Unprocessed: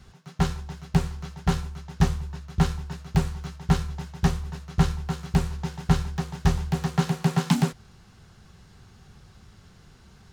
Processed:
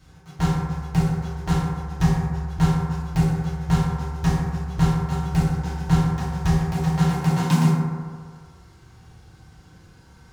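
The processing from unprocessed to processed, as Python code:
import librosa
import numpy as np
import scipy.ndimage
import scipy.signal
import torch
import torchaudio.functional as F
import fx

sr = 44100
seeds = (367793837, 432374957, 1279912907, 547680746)

y = fx.high_shelf(x, sr, hz=7300.0, db=4.5)
y = fx.rev_fdn(y, sr, rt60_s=1.8, lf_ratio=0.8, hf_ratio=0.3, size_ms=19.0, drr_db=-7.0)
y = y * 10.0 ** (-5.5 / 20.0)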